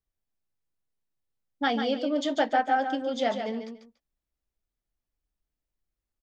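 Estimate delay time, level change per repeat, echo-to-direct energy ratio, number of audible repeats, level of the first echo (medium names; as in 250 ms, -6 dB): 144 ms, -13.5 dB, -7.5 dB, 2, -7.5 dB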